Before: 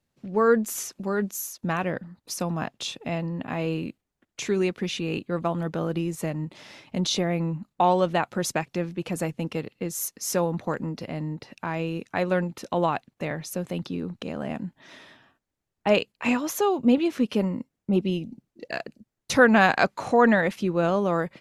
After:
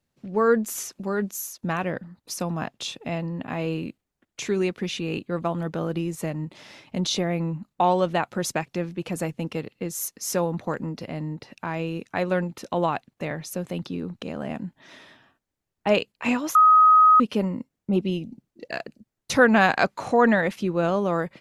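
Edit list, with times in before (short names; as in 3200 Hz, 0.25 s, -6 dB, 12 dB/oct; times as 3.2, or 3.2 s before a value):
16.55–17.2 bleep 1260 Hz -11 dBFS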